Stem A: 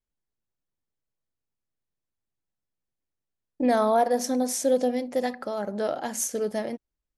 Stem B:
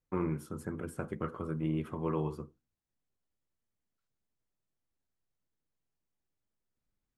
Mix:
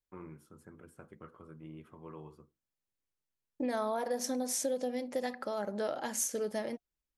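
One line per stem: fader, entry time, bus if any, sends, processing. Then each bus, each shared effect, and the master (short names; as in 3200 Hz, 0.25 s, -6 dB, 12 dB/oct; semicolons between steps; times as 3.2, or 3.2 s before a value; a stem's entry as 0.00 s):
-3.0 dB, 0.00 s, no send, notch 710 Hz, Q 15; compressor 6:1, threshold -25 dBFS, peak gain reduction 8 dB
-12.5 dB, 0.00 s, no send, dry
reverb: off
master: low shelf 450 Hz -4 dB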